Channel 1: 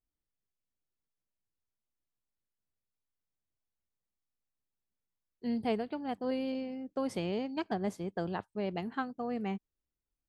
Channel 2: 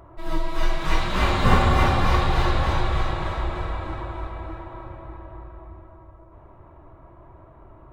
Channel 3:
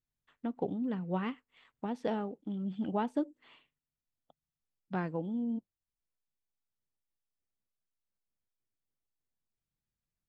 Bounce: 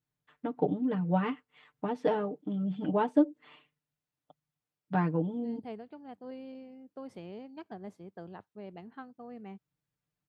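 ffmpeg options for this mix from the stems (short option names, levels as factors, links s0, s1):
-filter_complex "[0:a]volume=0.316[s0];[2:a]acontrast=87,aecho=1:1:6.7:0.78,volume=0.708[s1];[s0][s1]amix=inputs=2:normalize=0,highpass=76,highshelf=f=3400:g=-9.5"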